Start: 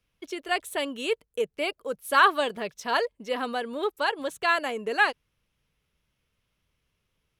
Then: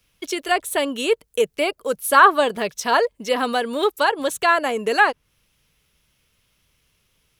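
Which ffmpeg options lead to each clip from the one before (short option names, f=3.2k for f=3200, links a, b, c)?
-filter_complex "[0:a]acrossover=split=1600[a][b];[b]acompressor=threshold=-40dB:ratio=6[c];[a][c]amix=inputs=2:normalize=0,highshelf=f=3.1k:g=9.5,volume=8dB"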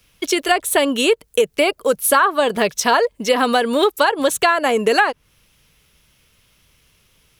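-af "acompressor=threshold=-19dB:ratio=12,volume=8dB"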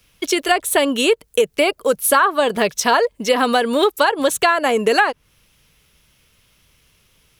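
-af anull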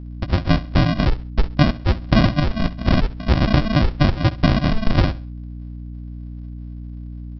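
-af "aresample=11025,acrusher=samples=25:mix=1:aa=0.000001,aresample=44100,aeval=exprs='val(0)+0.0251*(sin(2*PI*60*n/s)+sin(2*PI*2*60*n/s)/2+sin(2*PI*3*60*n/s)/3+sin(2*PI*4*60*n/s)/4+sin(2*PI*5*60*n/s)/5)':c=same,aecho=1:1:67|134|201:0.126|0.039|0.0121"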